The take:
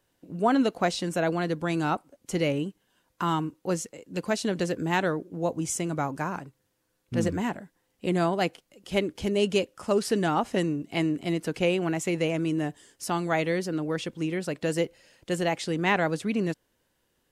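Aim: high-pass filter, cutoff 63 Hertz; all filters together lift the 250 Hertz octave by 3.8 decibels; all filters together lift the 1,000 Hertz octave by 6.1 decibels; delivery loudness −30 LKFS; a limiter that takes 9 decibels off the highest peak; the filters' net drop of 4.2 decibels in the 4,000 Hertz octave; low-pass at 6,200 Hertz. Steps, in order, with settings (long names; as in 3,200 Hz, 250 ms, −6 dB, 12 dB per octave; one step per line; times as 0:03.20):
high-pass filter 63 Hz
low-pass filter 6,200 Hz
parametric band 250 Hz +5 dB
parametric band 1,000 Hz +8 dB
parametric band 4,000 Hz −6.5 dB
level −3.5 dB
brickwall limiter −18 dBFS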